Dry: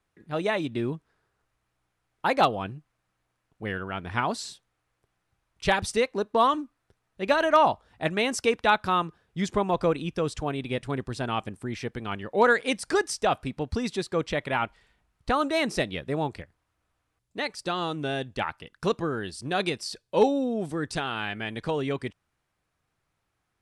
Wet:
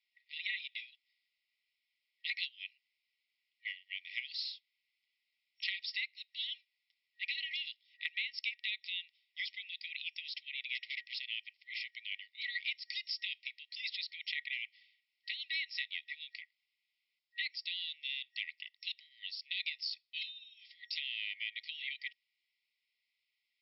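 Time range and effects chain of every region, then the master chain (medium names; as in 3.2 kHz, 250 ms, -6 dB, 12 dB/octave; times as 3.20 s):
10.75–11.18 s: overdrive pedal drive 21 dB, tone 2.7 kHz, clips at -16.5 dBFS + upward expansion, over -46 dBFS
whole clip: FFT band-pass 1.9–5.5 kHz; compression 5:1, threshold -36 dBFS; trim +1.5 dB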